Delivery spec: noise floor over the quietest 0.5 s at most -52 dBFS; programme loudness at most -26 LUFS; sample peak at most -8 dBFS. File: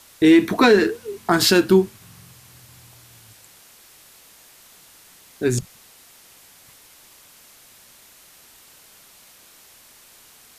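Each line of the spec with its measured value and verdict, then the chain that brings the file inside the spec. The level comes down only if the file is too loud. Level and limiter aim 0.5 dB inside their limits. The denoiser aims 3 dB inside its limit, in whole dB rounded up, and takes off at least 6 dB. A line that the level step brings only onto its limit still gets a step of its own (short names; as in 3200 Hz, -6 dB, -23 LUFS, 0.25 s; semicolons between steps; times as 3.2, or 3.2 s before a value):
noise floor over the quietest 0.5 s -50 dBFS: fail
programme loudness -17.5 LUFS: fail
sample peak -5.0 dBFS: fail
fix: gain -9 dB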